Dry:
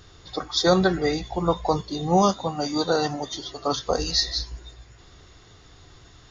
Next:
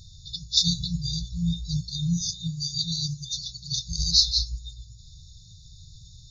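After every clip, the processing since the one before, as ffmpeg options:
ffmpeg -i in.wav -af "afftfilt=real='re*(1-between(b*sr/4096,180,3500))':imag='im*(1-between(b*sr/4096,180,3500))':win_size=4096:overlap=0.75,volume=4dB" out.wav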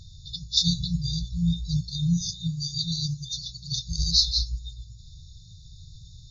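ffmpeg -i in.wav -af "highshelf=frequency=5800:gain=-9.5,volume=2dB" out.wav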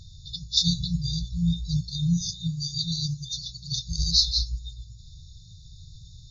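ffmpeg -i in.wav -af anull out.wav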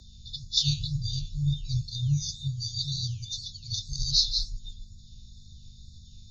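ffmpeg -i in.wav -af "flanger=delay=7.8:depth=5.4:regen=-88:speed=2:shape=sinusoidal,aeval=exprs='val(0)+0.00224*(sin(2*PI*50*n/s)+sin(2*PI*2*50*n/s)/2+sin(2*PI*3*50*n/s)/3+sin(2*PI*4*50*n/s)/4+sin(2*PI*5*50*n/s)/5)':channel_layout=same,afreqshift=-27,volume=2dB" out.wav

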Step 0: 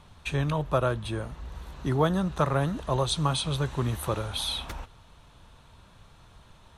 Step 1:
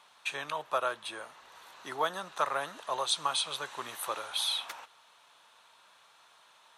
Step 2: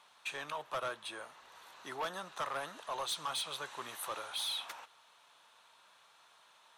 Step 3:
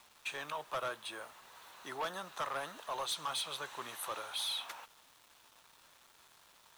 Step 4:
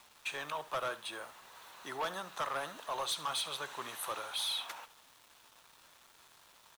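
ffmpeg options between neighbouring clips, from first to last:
ffmpeg -i in.wav -af "highpass=830" out.wav
ffmpeg -i in.wav -af "asoftclip=type=tanh:threshold=-28.5dB,volume=-3dB" out.wav
ffmpeg -i in.wav -af "acrusher=bits=9:mix=0:aa=0.000001" out.wav
ffmpeg -i in.wav -af "aecho=1:1:70:0.15,volume=1.5dB" out.wav

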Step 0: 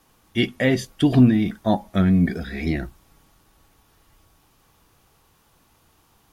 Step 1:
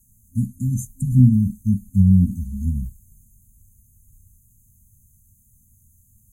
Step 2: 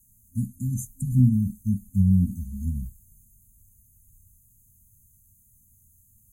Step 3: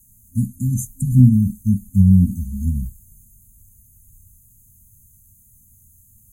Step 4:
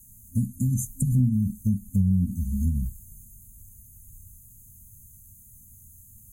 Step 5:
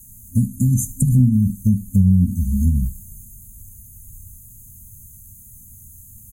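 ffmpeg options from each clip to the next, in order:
ffmpeg -i in.wav -af "equalizer=frequency=100:width_type=o:width=0.33:gain=5,equalizer=frequency=160:width_type=o:width=0.33:gain=-10,equalizer=frequency=250:width_type=o:width=0.33:gain=-10,equalizer=frequency=5000:width_type=o:width=0.33:gain=-11,afftfilt=real='re*(1-between(b*sr/4096,260,6200))':imag='im*(1-between(b*sr/4096,260,6200))':win_size=4096:overlap=0.75,volume=7dB" out.wav
ffmpeg -i in.wav -af "highshelf=frequency=8300:gain=7,volume=-5.5dB" out.wav
ffmpeg -i in.wav -af "aeval=exprs='0.376*(cos(1*acos(clip(val(0)/0.376,-1,1)))-cos(1*PI/2))+0.00237*(cos(3*acos(clip(val(0)/0.376,-1,1)))-cos(3*PI/2))':channel_layout=same,volume=7.5dB" out.wav
ffmpeg -i in.wav -af "acompressor=threshold=-24dB:ratio=3,volume=1.5dB" out.wav
ffmpeg -i in.wav -af "aecho=1:1:76|152|228:0.112|0.046|0.0189,volume=7.5dB" out.wav

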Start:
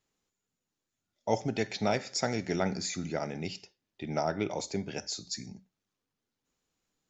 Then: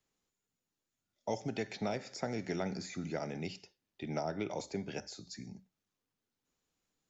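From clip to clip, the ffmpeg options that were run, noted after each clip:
ffmpeg -i in.wav -filter_complex "[0:a]acrossover=split=100|710|2300[link_01][link_02][link_03][link_04];[link_01]acompressor=threshold=-57dB:ratio=4[link_05];[link_02]acompressor=threshold=-31dB:ratio=4[link_06];[link_03]acompressor=threshold=-41dB:ratio=4[link_07];[link_04]acompressor=threshold=-46dB:ratio=4[link_08];[link_05][link_06][link_07][link_08]amix=inputs=4:normalize=0,volume=-2.5dB" out.wav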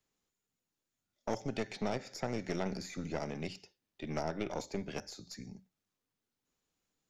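ffmpeg -i in.wav -af "aeval=exprs='(tanh(31.6*val(0)+0.8)-tanh(0.8))/31.6':channel_layout=same,volume=4.5dB" out.wav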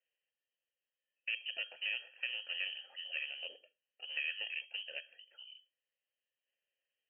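ffmpeg -i in.wav -filter_complex "[0:a]lowpass=frequency=2700:width_type=q:width=0.5098,lowpass=frequency=2700:width_type=q:width=0.6013,lowpass=frequency=2700:width_type=q:width=0.9,lowpass=frequency=2700:width_type=q:width=2.563,afreqshift=-3200,asplit=3[link_01][link_02][link_03];[link_01]bandpass=frequency=530:width_type=q:width=8,volume=0dB[link_04];[link_02]bandpass=frequency=1840:width_type=q:width=8,volume=-6dB[link_05];[link_03]bandpass=frequency=2480:width_type=q:width=8,volume=-9dB[link_06];[link_04][link_05][link_06]amix=inputs=3:normalize=0,volume=8dB" out.wav

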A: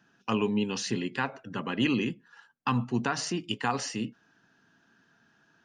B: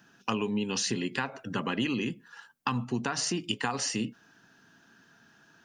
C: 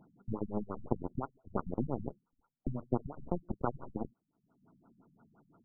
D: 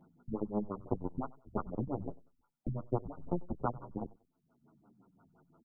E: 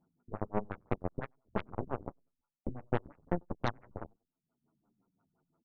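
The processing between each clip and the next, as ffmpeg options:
ffmpeg -i in.wav -af "highshelf=frequency=6400:gain=9,acompressor=threshold=-31dB:ratio=6,volume=4.5dB" out.wav
ffmpeg -i in.wav -af "aeval=exprs='0.237*(cos(1*acos(clip(val(0)/0.237,-1,1)))-cos(1*PI/2))+0.0531*(cos(4*acos(clip(val(0)/0.237,-1,1)))-cos(4*PI/2))+0.00944*(cos(6*acos(clip(val(0)/0.237,-1,1)))-cos(6*PI/2))+0.0376*(cos(7*acos(clip(val(0)/0.237,-1,1)))-cos(7*PI/2))':channel_layout=same,acompressor=mode=upward:threshold=-46dB:ratio=2.5,afftfilt=real='re*lt(b*sr/1024,210*pow(1500/210,0.5+0.5*sin(2*PI*5.8*pts/sr)))':imag='im*lt(b*sr/1024,210*pow(1500/210,0.5+0.5*sin(2*PI*5.8*pts/sr)))':win_size=1024:overlap=0.75,volume=2.5dB" out.wav
ffmpeg -i in.wav -filter_complex "[0:a]aecho=1:1:95|190:0.075|0.0195,asplit=2[link_01][link_02];[link_02]adelay=8.4,afreqshift=-0.94[link_03];[link_01][link_03]amix=inputs=2:normalize=1,volume=2.5dB" out.wav
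ffmpeg -i in.wav -af "aeval=exprs='0.168*(cos(1*acos(clip(val(0)/0.168,-1,1)))-cos(1*PI/2))+0.0299*(cos(7*acos(clip(val(0)/0.168,-1,1)))-cos(7*PI/2))+0.0237*(cos(8*acos(clip(val(0)/0.168,-1,1)))-cos(8*PI/2))':channel_layout=same" out.wav

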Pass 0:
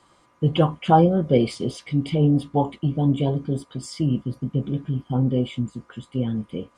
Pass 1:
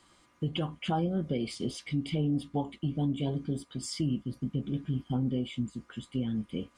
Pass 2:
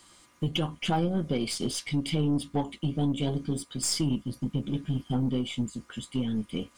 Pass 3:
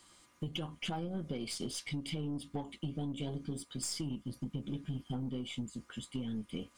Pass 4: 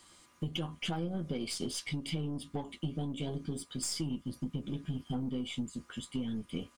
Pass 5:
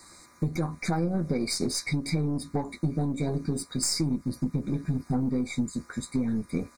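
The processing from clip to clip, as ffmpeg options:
ffmpeg -i in.wav -af "equalizer=frequency=125:width_type=o:width=1:gain=-6,equalizer=frequency=500:width_type=o:width=1:gain=-7,equalizer=frequency=1000:width_type=o:width=1:gain=-7,alimiter=limit=-21.5dB:level=0:latency=1:release=417" out.wav
ffmpeg -i in.wav -af "highshelf=frequency=4200:gain=11,aeval=exprs='0.126*(cos(1*acos(clip(val(0)/0.126,-1,1)))-cos(1*PI/2))+0.00708*(cos(6*acos(clip(val(0)/0.126,-1,1)))-cos(6*PI/2))':channel_layout=same,volume=2.5dB" out.wav
ffmpeg -i in.wav -af "acompressor=threshold=-29dB:ratio=6,volume=-5.5dB" out.wav
ffmpeg -i in.wav -filter_complex "[0:a]asplit=2[link_01][link_02];[link_02]adelay=12,volume=-11dB[link_03];[link_01][link_03]amix=inputs=2:normalize=0,volume=2dB" out.wav
ffmpeg -i in.wav -af "asuperstop=centerf=3000:order=20:qfactor=2.4,volume=8.5dB" out.wav

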